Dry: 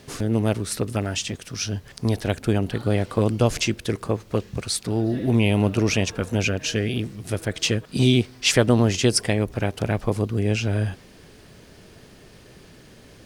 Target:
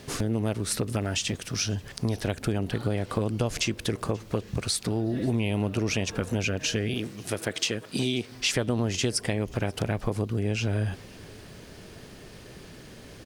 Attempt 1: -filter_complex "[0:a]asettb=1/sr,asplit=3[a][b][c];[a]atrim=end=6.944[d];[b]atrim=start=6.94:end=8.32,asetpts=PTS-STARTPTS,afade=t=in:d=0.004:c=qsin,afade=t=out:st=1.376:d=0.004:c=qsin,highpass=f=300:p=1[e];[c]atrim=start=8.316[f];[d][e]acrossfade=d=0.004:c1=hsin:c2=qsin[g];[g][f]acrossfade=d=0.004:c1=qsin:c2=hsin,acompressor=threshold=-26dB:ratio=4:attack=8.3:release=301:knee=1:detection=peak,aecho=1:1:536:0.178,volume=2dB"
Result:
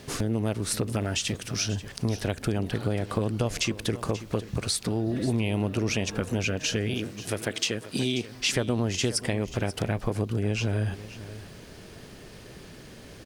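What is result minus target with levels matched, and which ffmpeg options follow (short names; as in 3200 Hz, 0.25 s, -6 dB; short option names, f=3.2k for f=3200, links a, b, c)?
echo-to-direct +10.5 dB
-filter_complex "[0:a]asettb=1/sr,asplit=3[a][b][c];[a]atrim=end=6.944[d];[b]atrim=start=6.94:end=8.32,asetpts=PTS-STARTPTS,afade=t=in:d=0.004:c=qsin,afade=t=out:st=1.376:d=0.004:c=qsin,highpass=f=300:p=1[e];[c]atrim=start=8.316[f];[d][e]acrossfade=d=0.004:c1=hsin:c2=qsin[g];[g][f]acrossfade=d=0.004:c1=qsin:c2=hsin,acompressor=threshold=-26dB:ratio=4:attack=8.3:release=301:knee=1:detection=peak,aecho=1:1:536:0.0531,volume=2dB"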